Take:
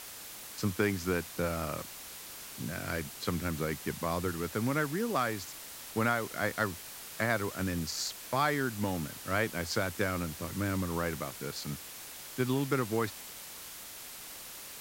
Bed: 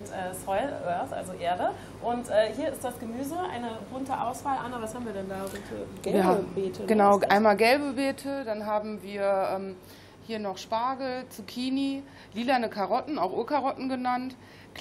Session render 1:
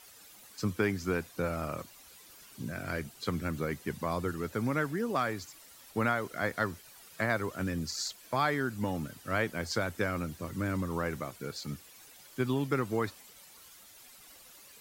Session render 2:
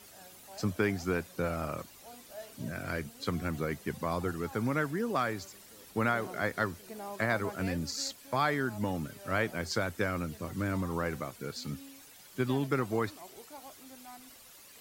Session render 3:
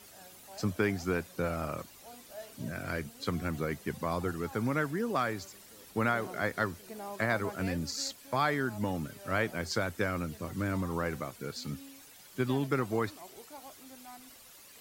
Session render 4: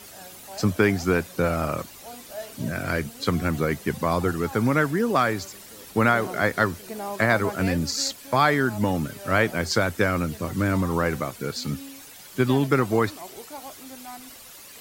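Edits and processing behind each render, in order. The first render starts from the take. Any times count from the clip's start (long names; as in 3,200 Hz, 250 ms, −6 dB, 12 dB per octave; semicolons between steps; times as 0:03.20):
broadband denoise 12 dB, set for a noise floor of −46 dBFS
mix in bed −22.5 dB
no processing that can be heard
level +9.5 dB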